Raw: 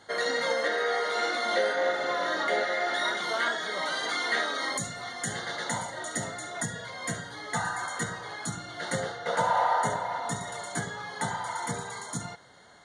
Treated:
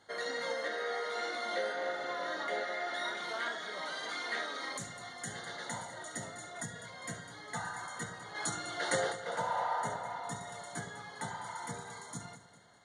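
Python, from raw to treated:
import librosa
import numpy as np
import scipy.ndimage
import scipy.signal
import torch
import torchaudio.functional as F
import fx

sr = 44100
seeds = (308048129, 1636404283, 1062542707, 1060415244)

y = fx.spec_box(x, sr, start_s=8.35, length_s=0.78, low_hz=290.0, high_hz=11000.0, gain_db=9)
y = fx.echo_feedback(y, sr, ms=202, feedback_pct=41, wet_db=-13.5)
y = fx.doppler_dist(y, sr, depth_ms=0.16, at=(3.13, 4.86))
y = y * 10.0 ** (-9.0 / 20.0)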